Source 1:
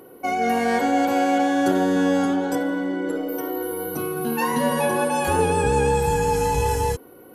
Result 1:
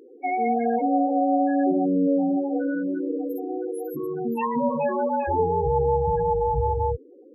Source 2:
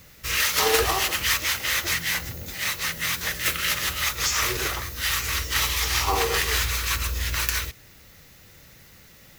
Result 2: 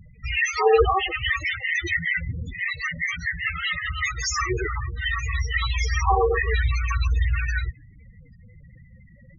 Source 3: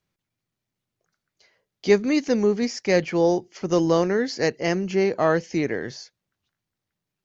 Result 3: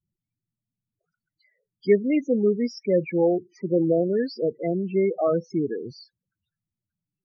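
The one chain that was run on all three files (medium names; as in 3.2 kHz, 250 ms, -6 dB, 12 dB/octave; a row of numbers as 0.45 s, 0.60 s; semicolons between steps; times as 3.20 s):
loudest bins only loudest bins 8; normalise loudness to -24 LUFS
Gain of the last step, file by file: -0.5 dB, +7.5 dB, -0.5 dB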